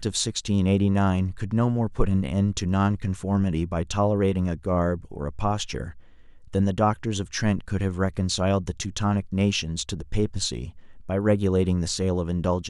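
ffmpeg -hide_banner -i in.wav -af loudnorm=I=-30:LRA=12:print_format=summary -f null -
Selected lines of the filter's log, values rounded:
Input Integrated:    -25.2 LUFS
Input True Peak:      -6.6 dBTP
Input LRA:             2.0 LU
Input Threshold:     -35.5 LUFS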